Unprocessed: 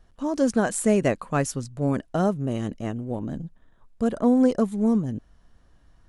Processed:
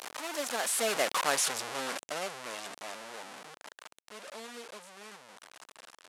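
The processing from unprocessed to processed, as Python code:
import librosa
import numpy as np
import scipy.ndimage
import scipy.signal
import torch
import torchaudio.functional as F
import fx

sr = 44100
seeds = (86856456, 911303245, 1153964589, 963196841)

y = fx.delta_mod(x, sr, bps=64000, step_db=-18.5)
y = fx.doppler_pass(y, sr, speed_mps=26, closest_m=13.0, pass_at_s=1.27)
y = scipy.signal.sosfilt(scipy.signal.butter(2, 650.0, 'highpass', fs=sr, output='sos'), y)
y = F.gain(torch.from_numpy(y), -2.0).numpy()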